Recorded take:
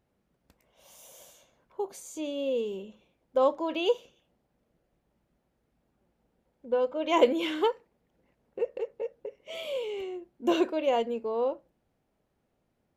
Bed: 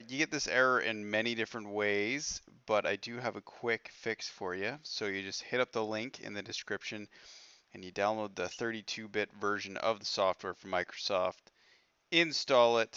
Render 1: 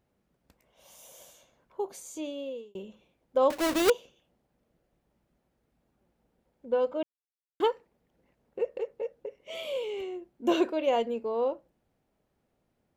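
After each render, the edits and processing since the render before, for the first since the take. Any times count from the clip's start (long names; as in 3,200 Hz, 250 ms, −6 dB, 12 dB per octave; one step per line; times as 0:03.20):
0:02.13–0:02.75: fade out
0:03.50–0:03.90: each half-wave held at its own peak
0:07.03–0:07.60: silence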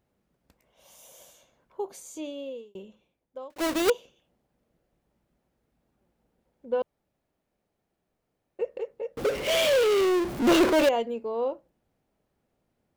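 0:02.61–0:03.56: fade out
0:06.82–0:08.59: fill with room tone
0:09.17–0:10.89: power curve on the samples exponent 0.35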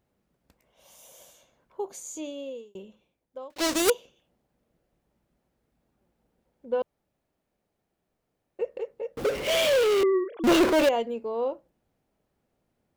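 0:01.87–0:02.78: parametric band 6,800 Hz +9 dB 0.21 octaves
0:03.53–0:03.93: parametric band 3,600 Hz → 12,000 Hz +10 dB 1.5 octaves
0:10.03–0:10.44: three sine waves on the formant tracks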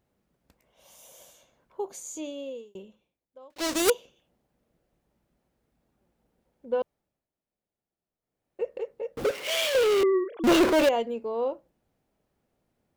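0:02.72–0:03.87: duck −10 dB, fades 0.48 s linear
0:06.81–0:08.67: duck −13 dB, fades 0.47 s
0:09.31–0:09.75: high-pass filter 1,300 Hz 6 dB per octave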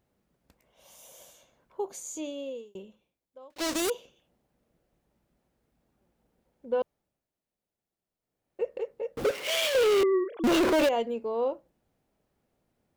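brickwall limiter −19 dBFS, peak gain reduction 10.5 dB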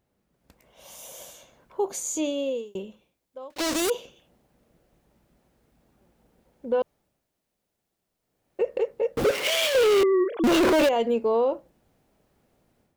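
automatic gain control gain up to 9 dB
brickwall limiter −16 dBFS, peak gain reduction 6 dB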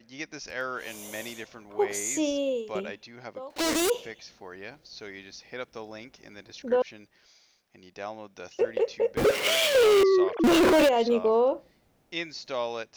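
mix in bed −5.5 dB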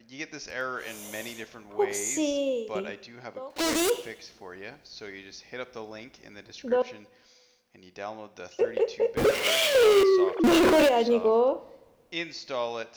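coupled-rooms reverb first 0.8 s, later 2.5 s, from −22 dB, DRR 13.5 dB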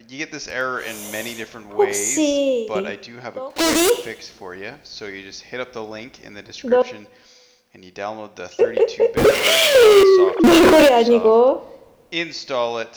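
level +9 dB
brickwall limiter −3 dBFS, peak gain reduction 1 dB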